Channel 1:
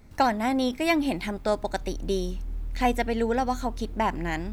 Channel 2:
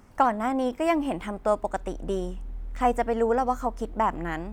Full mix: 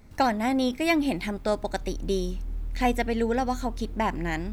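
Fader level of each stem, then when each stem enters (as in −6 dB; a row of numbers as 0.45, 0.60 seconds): 0.0, −16.0 decibels; 0.00, 0.00 seconds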